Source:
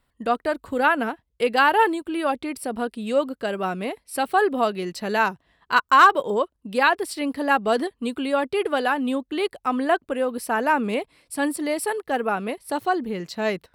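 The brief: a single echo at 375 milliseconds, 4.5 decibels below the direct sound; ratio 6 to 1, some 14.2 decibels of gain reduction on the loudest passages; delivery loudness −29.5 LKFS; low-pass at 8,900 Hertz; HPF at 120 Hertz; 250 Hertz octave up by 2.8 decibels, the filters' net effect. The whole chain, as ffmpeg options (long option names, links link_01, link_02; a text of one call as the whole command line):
ffmpeg -i in.wav -af "highpass=120,lowpass=8900,equalizer=frequency=250:width_type=o:gain=3.5,acompressor=threshold=-25dB:ratio=6,aecho=1:1:375:0.596,volume=-1dB" out.wav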